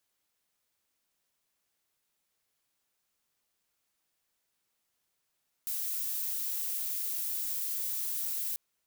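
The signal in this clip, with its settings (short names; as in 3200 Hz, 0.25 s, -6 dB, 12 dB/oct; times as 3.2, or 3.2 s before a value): noise violet, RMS -34 dBFS 2.89 s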